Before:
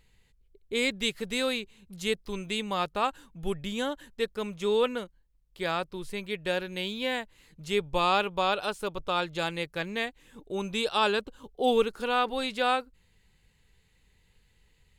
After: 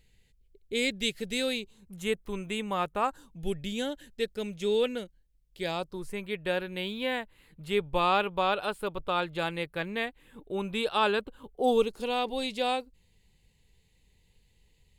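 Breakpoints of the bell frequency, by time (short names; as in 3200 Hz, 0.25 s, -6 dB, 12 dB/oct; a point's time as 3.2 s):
bell -14.5 dB 0.67 oct
1.51 s 1100 Hz
1.98 s 4700 Hz
2.96 s 4700 Hz
3.45 s 1100 Hz
5.63 s 1100 Hz
6.27 s 6000 Hz
11.46 s 6000 Hz
11.87 s 1400 Hz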